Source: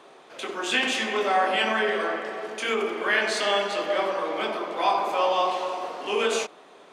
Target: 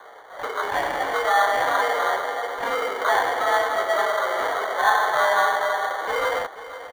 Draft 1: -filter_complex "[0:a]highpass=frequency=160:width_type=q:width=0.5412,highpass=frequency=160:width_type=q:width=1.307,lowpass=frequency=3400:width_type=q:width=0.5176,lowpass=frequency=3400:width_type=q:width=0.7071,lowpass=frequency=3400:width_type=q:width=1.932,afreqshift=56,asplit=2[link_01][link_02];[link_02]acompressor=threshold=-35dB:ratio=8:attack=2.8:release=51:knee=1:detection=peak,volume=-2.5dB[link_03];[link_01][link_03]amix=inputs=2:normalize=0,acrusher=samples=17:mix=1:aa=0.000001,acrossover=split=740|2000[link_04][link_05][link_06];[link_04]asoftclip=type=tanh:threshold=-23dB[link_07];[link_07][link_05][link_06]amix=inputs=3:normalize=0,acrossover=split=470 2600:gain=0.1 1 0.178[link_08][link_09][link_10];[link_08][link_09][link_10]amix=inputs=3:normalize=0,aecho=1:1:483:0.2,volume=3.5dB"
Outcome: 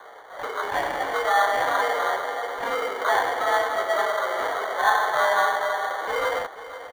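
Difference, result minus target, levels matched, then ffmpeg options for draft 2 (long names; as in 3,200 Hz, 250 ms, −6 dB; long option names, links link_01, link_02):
downward compressor: peak gain reduction +8 dB
-filter_complex "[0:a]highpass=frequency=160:width_type=q:width=0.5412,highpass=frequency=160:width_type=q:width=1.307,lowpass=frequency=3400:width_type=q:width=0.5176,lowpass=frequency=3400:width_type=q:width=0.7071,lowpass=frequency=3400:width_type=q:width=1.932,afreqshift=56,asplit=2[link_01][link_02];[link_02]acompressor=threshold=-26dB:ratio=8:attack=2.8:release=51:knee=1:detection=peak,volume=-2.5dB[link_03];[link_01][link_03]amix=inputs=2:normalize=0,acrusher=samples=17:mix=1:aa=0.000001,acrossover=split=740|2000[link_04][link_05][link_06];[link_04]asoftclip=type=tanh:threshold=-23dB[link_07];[link_07][link_05][link_06]amix=inputs=3:normalize=0,acrossover=split=470 2600:gain=0.1 1 0.178[link_08][link_09][link_10];[link_08][link_09][link_10]amix=inputs=3:normalize=0,aecho=1:1:483:0.2,volume=3.5dB"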